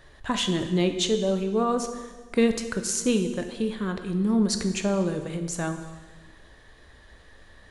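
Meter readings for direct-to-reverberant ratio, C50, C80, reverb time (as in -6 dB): 6.5 dB, 9.0 dB, 10.5 dB, 1.4 s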